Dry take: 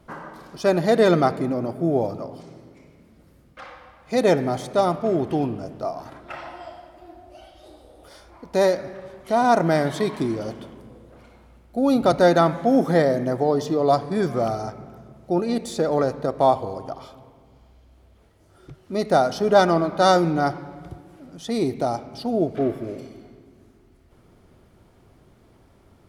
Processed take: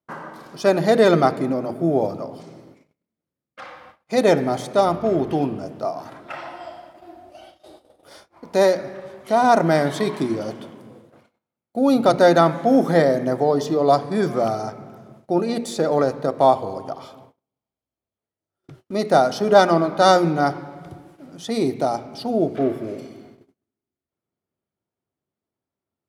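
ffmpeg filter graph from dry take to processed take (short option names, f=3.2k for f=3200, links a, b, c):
-filter_complex "[0:a]asettb=1/sr,asplit=3[a][b][c];[a]atrim=end=4.854[d];[b]atrim=start=4.85:end=5.32,asetpts=PTS-STARTPTS,afade=t=in:d=0.004:c=qsin,afade=t=out:st=0.466:d=0.004:c=qsin,equalizer=f=8.6k:t=o:w=0.31:g=-6,aeval=exprs='val(0)+0.0158*(sin(2*PI*50*n/s)+sin(2*PI*2*50*n/s)/2+sin(2*PI*3*50*n/s)/3+sin(2*PI*4*50*n/s)/4+sin(2*PI*5*50*n/s)/5)':c=same[e];[c]atrim=start=5.316[f];[d][e]acrossfade=d=0.004:c1=hsin:c2=qsin[g];[g][f]acrossfade=d=0.004:c1=qsin:c2=hsin,highpass=120,bandreject=f=60:t=h:w=6,bandreject=f=120:t=h:w=6,bandreject=f=180:t=h:w=6,bandreject=f=240:t=h:w=6,bandreject=f=300:t=h:w=6,bandreject=f=360:t=h:w=6,bandreject=f=420:t=h:w=6,bandreject=f=480:t=h:w=6,agate=range=-33dB:threshold=-48dB:ratio=16:detection=peak,volume=2.5dB"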